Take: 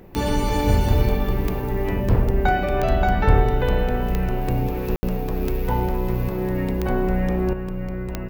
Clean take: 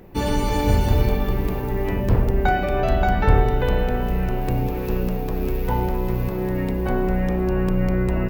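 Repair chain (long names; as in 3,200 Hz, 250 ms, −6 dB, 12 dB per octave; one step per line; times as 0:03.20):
click removal
ambience match 0:04.96–0:05.03
level 0 dB, from 0:07.53 +8 dB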